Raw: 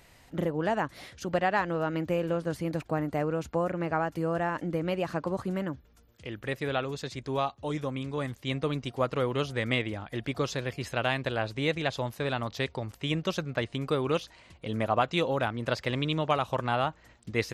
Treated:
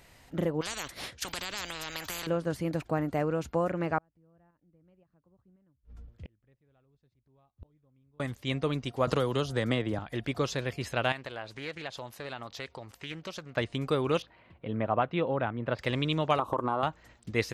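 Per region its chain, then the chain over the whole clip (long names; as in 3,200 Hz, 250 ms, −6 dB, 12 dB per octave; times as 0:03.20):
0:00.61–0:02.27: downward expander −37 dBFS + downward compressor 3 to 1, threshold −27 dBFS + every bin compressed towards the loudest bin 10 to 1
0:03.98–0:08.20: RIAA equalisation playback + shaped tremolo saw up 1.9 Hz, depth 50% + gate with flip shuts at −31 dBFS, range −38 dB
0:09.07–0:09.99: parametric band 2,300 Hz −9 dB 0.58 octaves + multiband upward and downward compressor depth 100%
0:11.12–0:13.57: downward compressor 2 to 1, threshold −38 dBFS + low-shelf EQ 310 Hz −9 dB + highs frequency-modulated by the lows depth 0.21 ms
0:14.22–0:15.79: high-pass filter 81 Hz + high-frequency loss of the air 460 metres
0:16.39–0:16.83: drawn EQ curve 190 Hz 0 dB, 300 Hz +14 dB, 730 Hz +5 dB, 1,100 Hz +14 dB, 2,000 Hz −13 dB, 3,300 Hz −7 dB, 5,800 Hz −9 dB, 10,000 Hz +1 dB + downward compressor 3 to 1, threshold −27 dBFS
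whole clip: no processing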